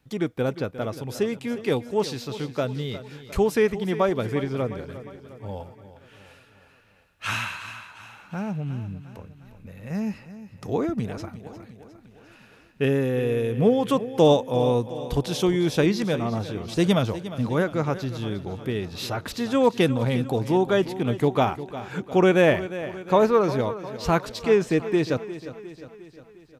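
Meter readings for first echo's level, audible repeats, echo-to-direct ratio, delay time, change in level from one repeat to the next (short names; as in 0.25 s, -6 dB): -14.0 dB, 5, -12.5 dB, 0.355 s, -5.0 dB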